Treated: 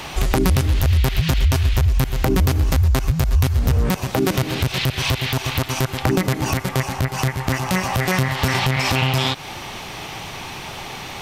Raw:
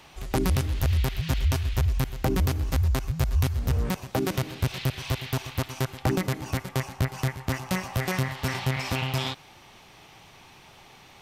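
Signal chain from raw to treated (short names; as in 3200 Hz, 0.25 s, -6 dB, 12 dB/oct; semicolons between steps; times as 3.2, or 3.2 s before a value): compressor, threshold -33 dBFS, peak gain reduction 13 dB; maximiser +23 dB; gain -4 dB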